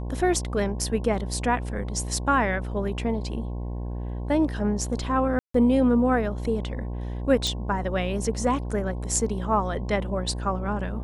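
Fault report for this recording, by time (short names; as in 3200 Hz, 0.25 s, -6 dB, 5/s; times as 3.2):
buzz 60 Hz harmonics 18 -31 dBFS
5.39–5.54 gap 0.154 s
7.47 pop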